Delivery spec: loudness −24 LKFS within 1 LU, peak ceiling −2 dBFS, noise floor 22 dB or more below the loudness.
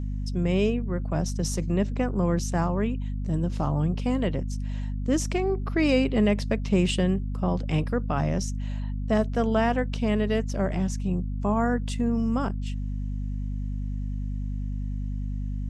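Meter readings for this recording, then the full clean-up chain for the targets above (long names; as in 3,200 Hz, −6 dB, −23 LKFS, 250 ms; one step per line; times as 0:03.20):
mains hum 50 Hz; hum harmonics up to 250 Hz; level of the hum −27 dBFS; integrated loudness −27.0 LKFS; sample peak −10.0 dBFS; target loudness −24.0 LKFS
→ mains-hum notches 50/100/150/200/250 Hz
level +3 dB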